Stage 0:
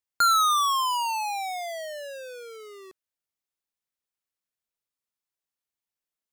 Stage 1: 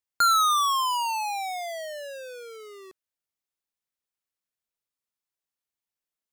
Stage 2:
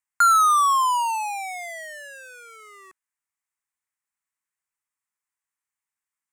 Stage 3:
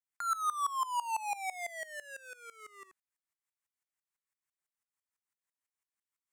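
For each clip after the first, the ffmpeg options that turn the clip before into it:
ffmpeg -i in.wav -af anull out.wav
ffmpeg -i in.wav -af "equalizer=frequency=500:width_type=o:width=1:gain=-10,equalizer=frequency=1000:width_type=o:width=1:gain=10,equalizer=frequency=2000:width_type=o:width=1:gain=11,equalizer=frequency=4000:width_type=o:width=1:gain=-9,equalizer=frequency=8000:width_type=o:width=1:gain=11,volume=-4.5dB" out.wav
ffmpeg -i in.wav -af "acompressor=threshold=-25dB:ratio=10,aeval=exprs='val(0)*pow(10,-19*if(lt(mod(-6*n/s,1),2*abs(-6)/1000),1-mod(-6*n/s,1)/(2*abs(-6)/1000),(mod(-6*n/s,1)-2*abs(-6)/1000)/(1-2*abs(-6)/1000))/20)':channel_layout=same" out.wav

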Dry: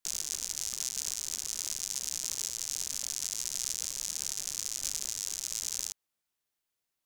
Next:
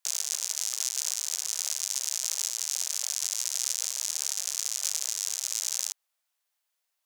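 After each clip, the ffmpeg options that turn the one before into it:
ffmpeg -i in.wav -af "highpass=frequency=550:width=0.5412,highpass=frequency=550:width=1.3066,volume=4.5dB" out.wav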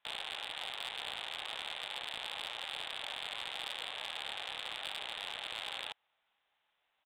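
ffmpeg -i in.wav -af "equalizer=frequency=820:width=5.2:gain=5.5,aresample=8000,acrusher=bits=3:mode=log:mix=0:aa=0.000001,aresample=44100,asoftclip=type=tanh:threshold=-36dB,volume=8dB" out.wav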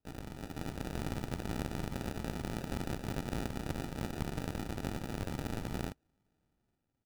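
ffmpeg -i in.wav -filter_complex "[0:a]asplit=3[link_01][link_02][link_03];[link_01]bandpass=frequency=270:width_type=q:width=8,volume=0dB[link_04];[link_02]bandpass=frequency=2290:width_type=q:width=8,volume=-6dB[link_05];[link_03]bandpass=frequency=3010:width_type=q:width=8,volume=-9dB[link_06];[link_04][link_05][link_06]amix=inputs=3:normalize=0,acrusher=samples=41:mix=1:aa=0.000001,dynaudnorm=framelen=130:gausssize=9:maxgain=7dB,volume=9dB" out.wav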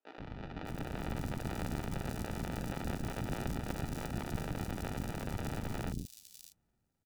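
ffmpeg -i in.wav -filter_complex "[0:a]acrossover=split=330|4100[link_01][link_02][link_03];[link_01]adelay=130[link_04];[link_03]adelay=600[link_05];[link_04][link_02][link_05]amix=inputs=3:normalize=0,volume=1dB" out.wav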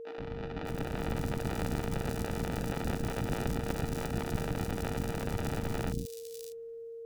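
ffmpeg -i in.wav -af "aeval=exprs='val(0)+0.00562*sin(2*PI*460*n/s)':channel_layout=same,volume=4dB" out.wav

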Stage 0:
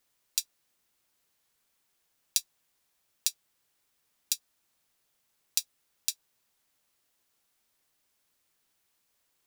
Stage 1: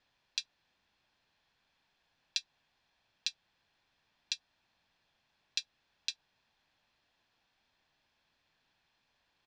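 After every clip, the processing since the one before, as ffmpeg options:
ffmpeg -i in.wav -filter_complex "[0:a]lowpass=frequency=4400:width=0.5412,lowpass=frequency=4400:width=1.3066,asplit=2[link_01][link_02];[link_02]alimiter=limit=-22.5dB:level=0:latency=1:release=185,volume=-1dB[link_03];[link_01][link_03]amix=inputs=2:normalize=0,aecho=1:1:1.2:0.34,volume=-1.5dB" out.wav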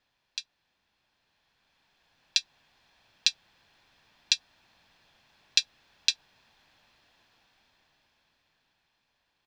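ffmpeg -i in.wav -af "dynaudnorm=framelen=380:gausssize=11:maxgain=16.5dB" out.wav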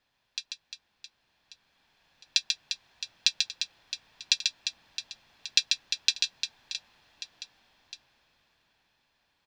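ffmpeg -i in.wav -af "aecho=1:1:140|350|665|1138|1846:0.631|0.398|0.251|0.158|0.1" out.wav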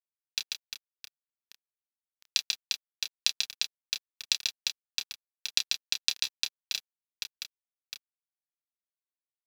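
ffmpeg -i in.wav -filter_complex "[0:a]acompressor=threshold=-31dB:ratio=4,aeval=exprs='sgn(val(0))*max(abs(val(0))-0.0106,0)':channel_layout=same,asplit=2[link_01][link_02];[link_02]adelay=29,volume=-8dB[link_03];[link_01][link_03]amix=inputs=2:normalize=0,volume=7dB" out.wav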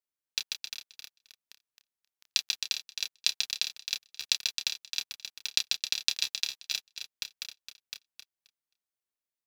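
ffmpeg -i in.wav -af "aecho=1:1:265|530|795:0.398|0.0637|0.0102" out.wav

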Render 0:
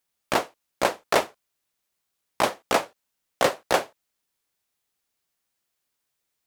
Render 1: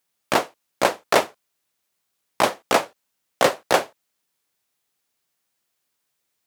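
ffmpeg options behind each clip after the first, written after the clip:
ffmpeg -i in.wav -af "highpass=86,volume=3.5dB" out.wav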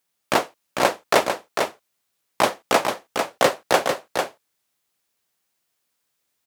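ffmpeg -i in.wav -af "aecho=1:1:448:0.531" out.wav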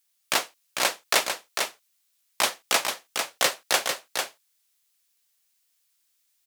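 ffmpeg -i in.wav -af "tiltshelf=frequency=1400:gain=-9.5,volume=-4.5dB" out.wav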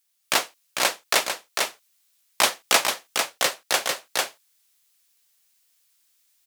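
ffmpeg -i in.wav -af "dynaudnorm=framelen=190:gausssize=3:maxgain=5dB" out.wav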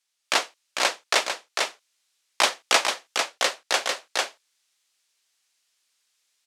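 ffmpeg -i in.wav -af "highpass=270,lowpass=7300" out.wav

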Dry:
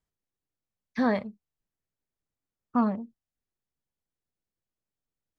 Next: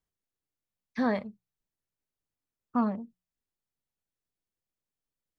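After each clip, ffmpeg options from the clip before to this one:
ffmpeg -i in.wav -af "bandreject=frequency=60:width_type=h:width=6,bandreject=frequency=120:width_type=h:width=6,bandreject=frequency=180:width_type=h:width=6,volume=-2.5dB" out.wav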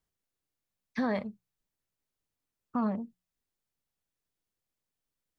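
ffmpeg -i in.wav -af "alimiter=level_in=1dB:limit=-24dB:level=0:latency=1:release=77,volume=-1dB,volume=2.5dB" out.wav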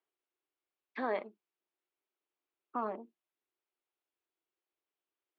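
ffmpeg -i in.wav -af "highpass=frequency=350:width=0.5412,highpass=frequency=350:width=1.3066,equalizer=frequency=350:width_type=q:width=4:gain=8,equalizer=frequency=520:width_type=q:width=4:gain=-4,equalizer=frequency=1800:width_type=q:width=4:gain=-4,lowpass=frequency=3200:width=0.5412,lowpass=frequency=3200:width=1.3066" out.wav

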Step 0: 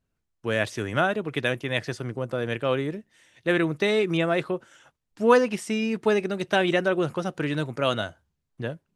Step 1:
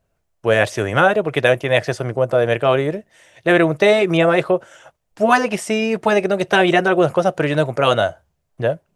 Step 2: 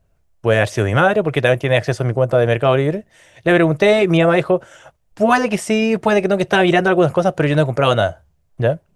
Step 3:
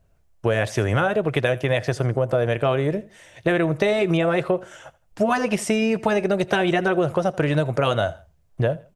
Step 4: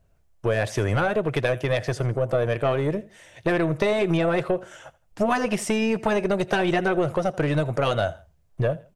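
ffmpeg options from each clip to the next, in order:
ffmpeg -i in.wav -af "equalizer=frequency=250:width_type=o:width=0.67:gain=-6,equalizer=frequency=630:width_type=o:width=0.67:gain=11,equalizer=frequency=4000:width_type=o:width=0.67:gain=-3,afftfilt=real='re*lt(hypot(re,im),1.12)':imag='im*lt(hypot(re,im),1.12)':win_size=1024:overlap=0.75,volume=8.5dB" out.wav
ffmpeg -i in.wav -filter_complex "[0:a]lowshelf=frequency=140:gain=10.5,asplit=2[link_01][link_02];[link_02]alimiter=limit=-7dB:level=0:latency=1:release=172,volume=-2dB[link_03];[link_01][link_03]amix=inputs=2:normalize=0,volume=-4dB" out.wav
ffmpeg -i in.wav -af "acompressor=threshold=-17dB:ratio=6,aecho=1:1:82|164:0.0891|0.0276" out.wav
ffmpeg -i in.wav -af "aeval=exprs='(tanh(3.16*val(0)+0.4)-tanh(0.4))/3.16':channel_layout=same" out.wav

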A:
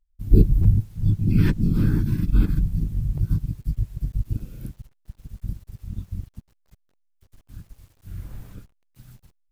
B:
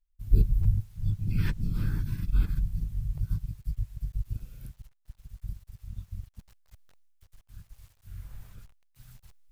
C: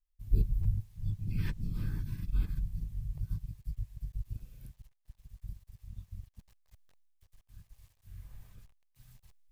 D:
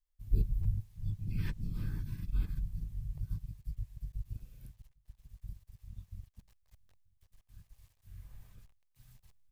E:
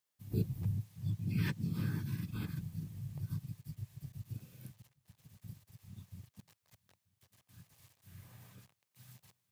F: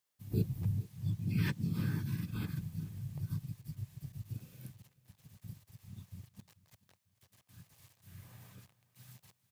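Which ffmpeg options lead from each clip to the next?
ffmpeg -i in.wav -af "equalizer=frequency=290:width=0.75:gain=-13.5,areverse,acompressor=mode=upward:threshold=-38dB:ratio=2.5,areverse,volume=-5dB" out.wav
ffmpeg -i in.wav -af "bandreject=frequency=1400:width=7.8,volume=-6dB" out.wav
ffmpeg -i in.wav -filter_complex "[0:a]asplit=2[link_01][link_02];[link_02]adelay=932.9,volume=-29dB,highshelf=frequency=4000:gain=-21[link_03];[link_01][link_03]amix=inputs=2:normalize=0,volume=-2dB" out.wav
ffmpeg -i in.wav -af "highpass=frequency=120:width=0.5412,highpass=frequency=120:width=1.3066,volume=7dB" out.wav
ffmpeg -i in.wav -af "aecho=1:1:437:0.1,volume=1.5dB" out.wav

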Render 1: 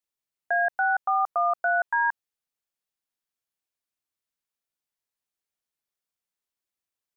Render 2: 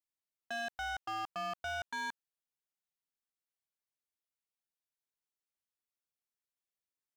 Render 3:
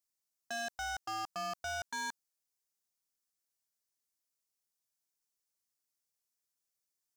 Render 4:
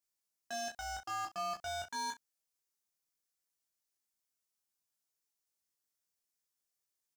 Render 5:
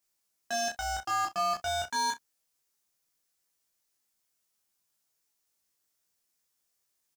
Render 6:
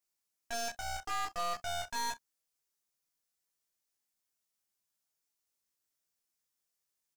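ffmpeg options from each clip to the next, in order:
ffmpeg -i in.wav -af "asoftclip=type=hard:threshold=-27.5dB,volume=-8.5dB" out.wav
ffmpeg -i in.wav -af "highshelf=frequency=4200:width_type=q:width=1.5:gain=7" out.wav
ffmpeg -i in.wav -af "aecho=1:1:20|34|65:0.708|0.473|0.168,volume=-3dB" out.wav
ffmpeg -i in.wav -filter_complex "[0:a]asplit=2[link_01][link_02];[link_02]adelay=14,volume=-13dB[link_03];[link_01][link_03]amix=inputs=2:normalize=0,volume=8dB" out.wav
ffmpeg -i in.wav -af "aeval=exprs='0.1*(cos(1*acos(clip(val(0)/0.1,-1,1)))-cos(1*PI/2))+0.0178*(cos(6*acos(clip(val(0)/0.1,-1,1)))-cos(6*PI/2))':channel_layout=same,volume=-7dB" out.wav

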